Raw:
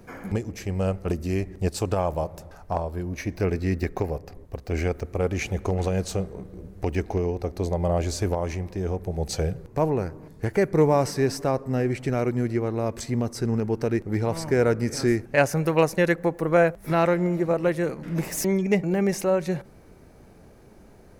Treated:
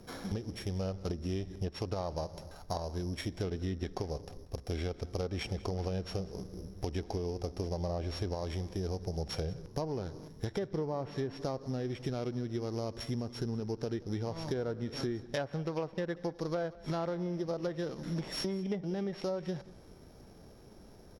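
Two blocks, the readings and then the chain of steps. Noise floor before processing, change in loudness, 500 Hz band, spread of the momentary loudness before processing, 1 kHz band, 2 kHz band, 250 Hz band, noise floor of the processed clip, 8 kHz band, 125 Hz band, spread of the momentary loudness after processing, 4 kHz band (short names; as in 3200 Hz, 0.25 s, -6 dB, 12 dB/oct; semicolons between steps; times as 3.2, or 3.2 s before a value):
-50 dBFS, -11.5 dB, -12.5 dB, 9 LU, -13.0 dB, -16.0 dB, -11.0 dB, -54 dBFS, -15.5 dB, -10.0 dB, 7 LU, -4.5 dB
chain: sample sorter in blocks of 8 samples; treble ducked by the level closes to 1900 Hz, closed at -17 dBFS; compressor, threshold -28 dBFS, peak gain reduction 13.5 dB; on a send: echo 0.188 s -20.5 dB; on the sum: gain -4 dB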